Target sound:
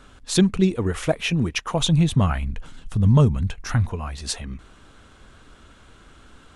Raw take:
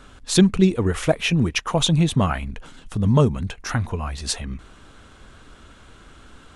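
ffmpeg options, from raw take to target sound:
ffmpeg -i in.wav -filter_complex "[0:a]asplit=3[link_01][link_02][link_03];[link_01]afade=type=out:start_time=1.81:duration=0.02[link_04];[link_02]asubboost=boost=2.5:cutoff=200,afade=type=in:start_time=1.81:duration=0.02,afade=type=out:start_time=3.88:duration=0.02[link_05];[link_03]afade=type=in:start_time=3.88:duration=0.02[link_06];[link_04][link_05][link_06]amix=inputs=3:normalize=0,volume=-2.5dB" out.wav

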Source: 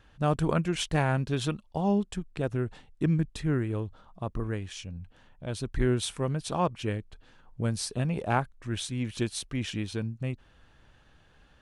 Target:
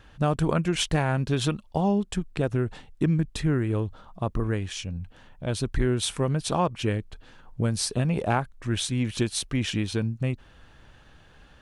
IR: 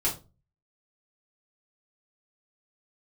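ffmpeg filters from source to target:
-af "acompressor=threshold=-27dB:ratio=3,volume=6.5dB"

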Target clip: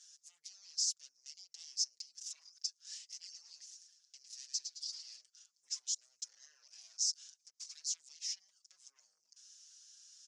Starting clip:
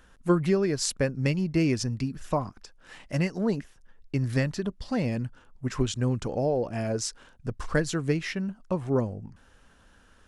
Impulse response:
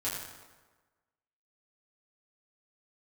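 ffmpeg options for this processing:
-filter_complex "[0:a]acompressor=threshold=-33dB:ratio=8,alimiter=level_in=8dB:limit=-24dB:level=0:latency=1:release=70,volume=-8dB,aeval=exprs='0.0251*sin(PI/2*2*val(0)/0.0251)':channel_layout=same,asuperpass=centerf=5900:order=4:qfactor=2.7,asettb=1/sr,asplit=3[link_01][link_02][link_03];[link_01]atrim=end=3.184[link_04];[link_02]atrim=start=3.18:end=5.21,asetpts=PTS-STARTPTS,afade=type=in:duration=0.004:curve=qsin,afade=type=out:start_time=2.026:duration=0.004:curve=qsin,asplit=6[link_05][link_06][link_07][link_08][link_09][link_10];[link_06]adelay=108,afreqshift=-96,volume=-8dB[link_11];[link_07]adelay=216,afreqshift=-192,volume=-14.6dB[link_12];[link_08]adelay=324,afreqshift=-288,volume=-21.1dB[link_13];[link_09]adelay=432,afreqshift=-384,volume=-27.7dB[link_14];[link_10]adelay=540,afreqshift=-480,volume=-34.2dB[link_15];[link_05][link_11][link_12][link_13][link_14][link_15]amix=inputs=6:normalize=0,atrim=end_sample=89523[link_16];[link_03]atrim=start=5.206[link_17];[link_04][link_16]acrossfade=duration=0.004:curve1=hsin:curve2=qsin[link_18];[link_18][link_17]acrossfade=duration=0.004:curve1=qsin:curve2=hsin,asplit=2[link_19][link_20];[link_20]adelay=5.8,afreqshift=1.3[link_21];[link_19][link_21]amix=inputs=2:normalize=1,volume=9.5dB"

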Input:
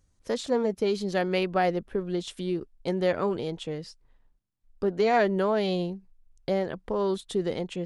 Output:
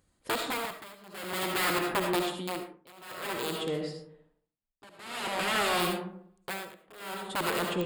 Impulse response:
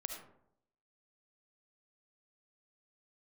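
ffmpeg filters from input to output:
-filter_complex "[0:a]acontrast=84,aeval=exprs='(mod(5.96*val(0)+1,2)-1)/5.96':channel_layout=same,highpass=frequency=220:poles=1[link_01];[1:a]atrim=start_sample=2205[link_02];[link_01][link_02]afir=irnorm=-1:irlink=0,tremolo=f=0.51:d=0.96,asettb=1/sr,asplit=3[link_03][link_04][link_05];[link_03]atrim=end=3.664[link_06];[link_04]atrim=start=3.66:end=5.8,asetpts=PTS-STARTPTS,afade=type=in:duration=0.004:curve=qsin,afade=type=out:start_time=2.136:duration=0.004:curve=qsin,lowpass=9100[link_07];[link_05]atrim=start=5.796[link_08];[link_06][link_07]acrossfade=duration=0.004:curve1=hsin:curve2=qsin[link_09];[link_09][link_08]acrossfade=duration=0.004:curve1=qsin:curve2=hsin,asoftclip=type=tanh:threshold=-22dB,equalizer=frequency=5900:width=4.3:gain=-15"

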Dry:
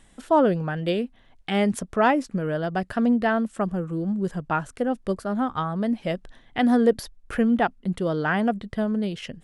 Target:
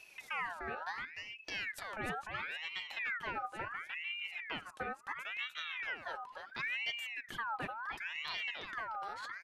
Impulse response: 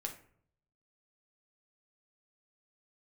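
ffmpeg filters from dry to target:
-filter_complex "[0:a]aecho=1:1:3.7:0.45,acompressor=threshold=-48dB:ratio=2,aecho=1:1:300:0.562,asplit=2[link_01][link_02];[1:a]atrim=start_sample=2205[link_03];[link_02][link_03]afir=irnorm=-1:irlink=0,volume=-18.5dB[link_04];[link_01][link_04]amix=inputs=2:normalize=0,aeval=exprs='val(0)*sin(2*PI*1800*n/s+1800*0.45/0.72*sin(2*PI*0.72*n/s))':channel_layout=same,volume=-2dB"

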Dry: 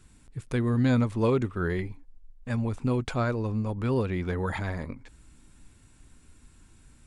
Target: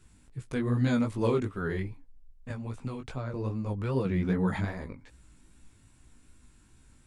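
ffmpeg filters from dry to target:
ffmpeg -i in.wav -filter_complex "[0:a]asettb=1/sr,asplit=3[link_01][link_02][link_03];[link_01]atrim=end=0.764[link_04];[link_02]atrim=start=0.76:end=1.62,asetpts=PTS-STARTPTS,afade=type=in:duration=0.004:curve=qsin,afade=type=out:start_time=0.856:duration=0.004:curve=qsin,highshelf=frequency=6400:gain=6.5[link_05];[link_03]atrim=start=1.616[link_06];[link_04][link_05]acrossfade=duration=0.004:curve1=hsin:curve2=qsin[link_07];[link_07][link_06]acrossfade=duration=0.004:curve1=qsin:curve2=hsin,asettb=1/sr,asplit=3[link_08][link_09][link_10];[link_08]atrim=end=2.504[link_11];[link_09]atrim=start=2.5:end=3.34,asetpts=PTS-STARTPTS,afade=type=in:duration=0.004:curve=qsin,afade=type=out:start_time=0.836:duration=0.004:curve=qsin,acrossover=split=170|970[link_12][link_13][link_14];[link_12]acompressor=threshold=-35dB:ratio=4[link_15];[link_13]acompressor=threshold=-36dB:ratio=4[link_16];[link_14]acompressor=threshold=-44dB:ratio=4[link_17];[link_15][link_16][link_17]amix=inputs=3:normalize=0[link_18];[link_10]atrim=start=3.336[link_19];[link_11][link_18]acrossfade=duration=0.004:curve1=hsin:curve2=qsin[link_20];[link_20][link_19]acrossfade=duration=0.004:curve1=qsin:curve2=hsin,flanger=delay=15:depth=5.7:speed=2.5,asettb=1/sr,asplit=3[link_21][link_22][link_23];[link_21]atrim=end=4.054[link_24];[link_22]atrim=start=4.05:end=4.65,asetpts=PTS-STARTPTS,afade=type=in:duration=0.004:curve=qsin,afade=type=out:start_time=0.596:duration=0.004:curve=qsin,equalizer=frequency=190:width_type=o:width=1.2:gain=10[link_25];[link_23]atrim=start=4.646[link_26];[link_24][link_25]acrossfade=duration=0.004:curve1=hsin:curve2=qsin[link_27];[link_27][link_26]acrossfade=duration=0.004:curve1=qsin:curve2=hsin" out.wav

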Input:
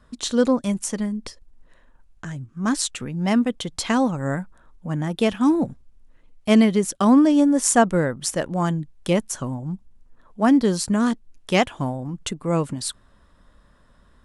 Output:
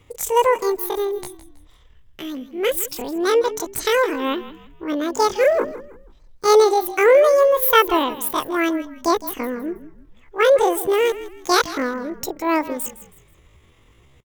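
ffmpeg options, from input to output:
ffmpeg -i in.wav -filter_complex "[0:a]asetrate=85689,aresample=44100,atempo=0.514651,asplit=4[link_01][link_02][link_03][link_04];[link_02]adelay=161,afreqshift=-36,volume=-15dB[link_05];[link_03]adelay=322,afreqshift=-72,volume=-24.9dB[link_06];[link_04]adelay=483,afreqshift=-108,volume=-34.8dB[link_07];[link_01][link_05][link_06][link_07]amix=inputs=4:normalize=0,volume=2dB" out.wav

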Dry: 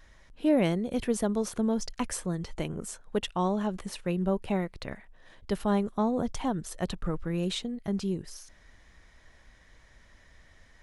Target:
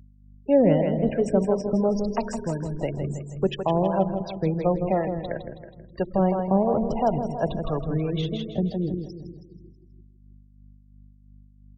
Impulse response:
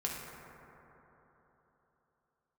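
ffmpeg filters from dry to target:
-filter_complex "[0:a]acrossover=split=470[link_01][link_02];[link_02]acompressor=threshold=-28dB:ratio=6[link_03];[link_01][link_03]amix=inputs=2:normalize=0,acrossover=split=240|5400[link_04][link_05][link_06];[link_04]aeval=exprs='sgn(val(0))*max(abs(val(0))-0.00355,0)':channel_layout=same[link_07];[link_07][link_05][link_06]amix=inputs=3:normalize=0,lowpass=7700,asplit=2[link_08][link_09];[1:a]atrim=start_sample=2205[link_10];[link_09][link_10]afir=irnorm=-1:irlink=0,volume=-10dB[link_11];[link_08][link_11]amix=inputs=2:normalize=0,asetrate=40517,aresample=44100,afftfilt=real='re*gte(hypot(re,im),0.0251)':imag='im*gte(hypot(re,im),0.0251)':win_size=1024:overlap=0.75,equalizer=frequency=100:width_type=o:width=0.67:gain=4,equalizer=frequency=630:width_type=o:width=0.67:gain=9,equalizer=frequency=2500:width_type=o:width=0.67:gain=-5,aecho=1:1:161|322|483|644|805:0.447|0.201|0.0905|0.0407|0.0183,aeval=exprs='val(0)+0.00282*(sin(2*PI*50*n/s)+sin(2*PI*2*50*n/s)/2+sin(2*PI*3*50*n/s)/3+sin(2*PI*4*50*n/s)/4+sin(2*PI*5*50*n/s)/5)':channel_layout=same,acrossover=split=470[link_12][link_13];[link_12]aeval=exprs='val(0)*(1-0.5/2+0.5/2*cos(2*PI*2.9*n/s))':channel_layout=same[link_14];[link_13]aeval=exprs='val(0)*(1-0.5/2-0.5/2*cos(2*PI*2.9*n/s))':channel_layout=same[link_15];[link_14][link_15]amix=inputs=2:normalize=0,adynamicequalizer=threshold=0.001:dfrequency=5700:dqfactor=1.4:tfrequency=5700:tqfactor=1.4:attack=5:release=100:ratio=0.375:range=2.5:mode=cutabove:tftype=bell,volume=3.5dB"

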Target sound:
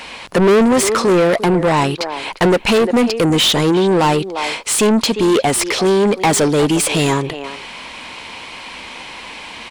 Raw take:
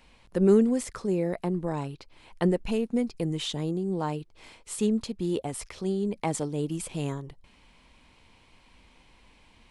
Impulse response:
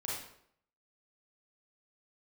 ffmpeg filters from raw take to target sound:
-filter_complex "[0:a]asplit=2[link_01][link_02];[link_02]adelay=350,highpass=300,lowpass=3400,asoftclip=type=hard:threshold=-18.5dB,volume=-17dB[link_03];[link_01][link_03]amix=inputs=2:normalize=0,acontrast=63,asplit=2[link_04][link_05];[link_05]highpass=frequency=720:poles=1,volume=30dB,asoftclip=type=tanh:threshold=-5dB[link_06];[link_04][link_06]amix=inputs=2:normalize=0,lowpass=frequency=6300:poles=1,volume=-6dB"

